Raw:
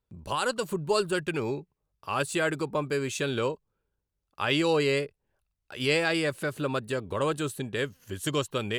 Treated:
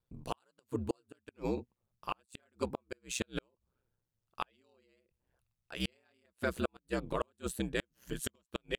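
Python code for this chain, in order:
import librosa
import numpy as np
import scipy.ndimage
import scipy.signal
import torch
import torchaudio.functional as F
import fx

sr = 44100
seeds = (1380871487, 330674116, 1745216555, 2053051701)

y = x * np.sin(2.0 * np.pi * 63.0 * np.arange(len(x)) / sr)
y = fx.gate_flip(y, sr, shuts_db=-20.0, range_db=-42)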